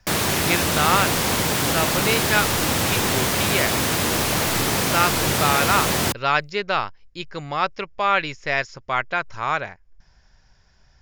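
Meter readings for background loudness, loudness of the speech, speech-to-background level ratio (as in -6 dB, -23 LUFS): -20.0 LUFS, -24.0 LUFS, -4.0 dB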